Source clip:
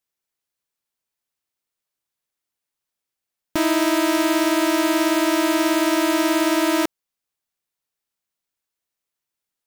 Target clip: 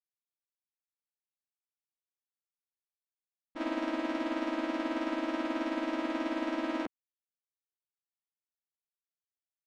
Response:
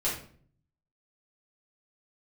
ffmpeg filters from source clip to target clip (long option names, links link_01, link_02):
-filter_complex "[0:a]agate=range=-33dB:threshold=-8dB:ratio=3:detection=peak,lowpass=3100,asplit=3[link_01][link_02][link_03];[link_02]asetrate=33038,aresample=44100,atempo=1.33484,volume=-11dB[link_04];[link_03]asetrate=37084,aresample=44100,atempo=1.18921,volume=-6dB[link_05];[link_01][link_04][link_05]amix=inputs=3:normalize=0"